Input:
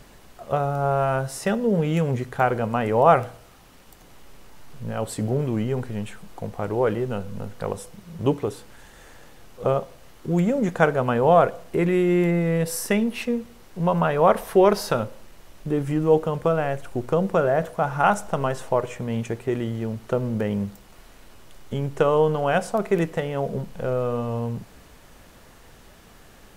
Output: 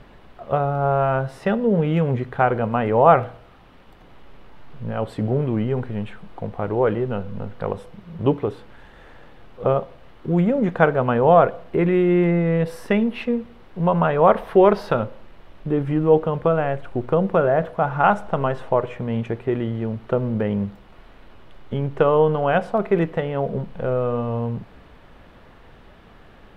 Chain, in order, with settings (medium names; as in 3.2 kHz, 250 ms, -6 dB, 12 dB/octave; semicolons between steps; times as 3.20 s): FFT filter 1.2 kHz 0 dB, 3.5 kHz -4 dB, 6.7 kHz -21 dB; trim +2.5 dB